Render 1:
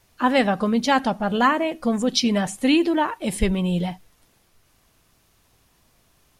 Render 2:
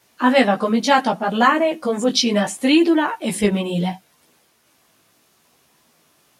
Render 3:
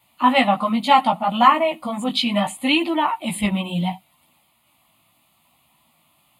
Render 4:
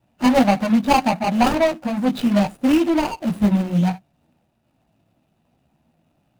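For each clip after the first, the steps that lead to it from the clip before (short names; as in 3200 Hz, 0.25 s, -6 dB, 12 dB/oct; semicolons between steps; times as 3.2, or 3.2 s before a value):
HPF 190 Hz 12 dB/oct; chorus voices 2, 0.7 Hz, delay 16 ms, depth 3.8 ms; gain +7 dB
dynamic EQ 1400 Hz, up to +4 dB, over -27 dBFS, Q 0.82; fixed phaser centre 1600 Hz, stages 6; gain +1 dB
median filter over 41 samples; gain +5.5 dB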